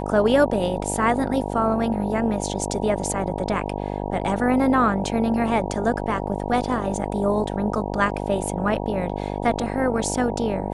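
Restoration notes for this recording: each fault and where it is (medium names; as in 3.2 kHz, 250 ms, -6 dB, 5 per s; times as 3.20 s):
buzz 50 Hz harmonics 19 -28 dBFS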